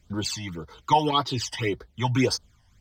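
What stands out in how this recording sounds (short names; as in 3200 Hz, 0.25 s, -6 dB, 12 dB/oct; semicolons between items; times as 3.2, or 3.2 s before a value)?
phasing stages 12, 1.8 Hz, lowest notch 390–2700 Hz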